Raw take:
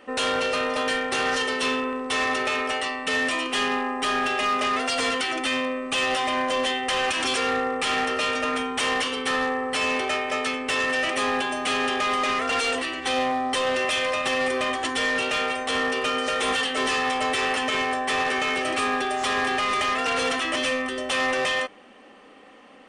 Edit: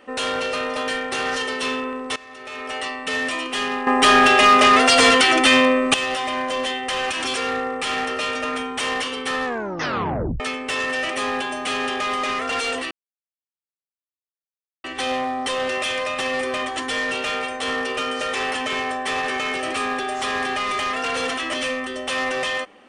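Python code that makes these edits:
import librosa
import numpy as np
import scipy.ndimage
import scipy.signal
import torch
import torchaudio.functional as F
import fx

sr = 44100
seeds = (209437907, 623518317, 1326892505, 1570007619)

y = fx.edit(x, sr, fx.fade_in_from(start_s=2.16, length_s=0.67, curve='qua', floor_db=-19.5),
    fx.clip_gain(start_s=3.87, length_s=2.07, db=11.0),
    fx.tape_stop(start_s=9.45, length_s=0.95),
    fx.insert_silence(at_s=12.91, length_s=1.93),
    fx.cut(start_s=16.42, length_s=0.95), tone=tone)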